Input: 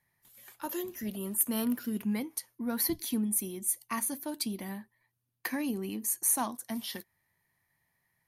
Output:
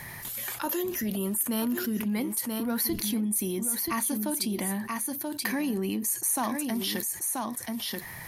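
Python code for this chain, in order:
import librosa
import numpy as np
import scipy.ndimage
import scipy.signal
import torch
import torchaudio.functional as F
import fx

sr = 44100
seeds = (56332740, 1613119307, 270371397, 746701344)

p1 = x + fx.echo_single(x, sr, ms=982, db=-10.5, dry=0)
p2 = fx.env_flatten(p1, sr, amount_pct=70)
y = p2 * librosa.db_to_amplitude(-2.0)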